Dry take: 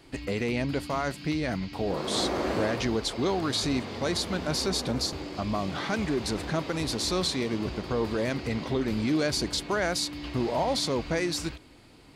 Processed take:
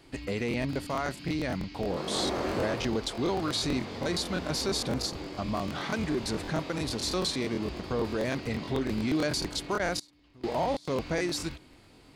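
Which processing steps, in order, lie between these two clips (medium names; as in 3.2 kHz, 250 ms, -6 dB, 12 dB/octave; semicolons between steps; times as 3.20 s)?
9.77–10.85 s: trance gate "xx.xx.....xx" 170 bpm -24 dB; crackling interface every 0.11 s, samples 1024, repeat, from 0.49 s; trim -2 dB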